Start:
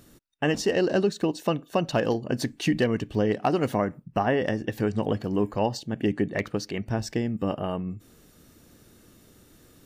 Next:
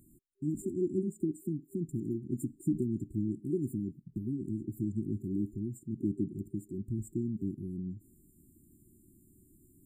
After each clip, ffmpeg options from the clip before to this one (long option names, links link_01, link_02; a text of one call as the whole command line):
ffmpeg -i in.wav -af "afftfilt=real='re*(1-between(b*sr/4096,390,7100))':imag='im*(1-between(b*sr/4096,390,7100))':win_size=4096:overlap=0.75,volume=-6dB" out.wav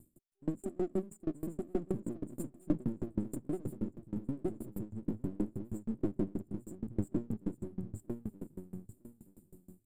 ffmpeg -i in.wav -filter_complex "[0:a]aeval=exprs='if(lt(val(0),0),0.447*val(0),val(0))':channel_layout=same,asplit=2[link_01][link_02];[link_02]aecho=0:1:924|1848|2772:0.708|0.17|0.0408[link_03];[link_01][link_03]amix=inputs=2:normalize=0,aeval=exprs='val(0)*pow(10,-28*if(lt(mod(6.3*n/s,1),2*abs(6.3)/1000),1-mod(6.3*n/s,1)/(2*abs(6.3)/1000),(mod(6.3*n/s,1)-2*abs(6.3)/1000)/(1-2*abs(6.3)/1000))/20)':channel_layout=same,volume=5.5dB" out.wav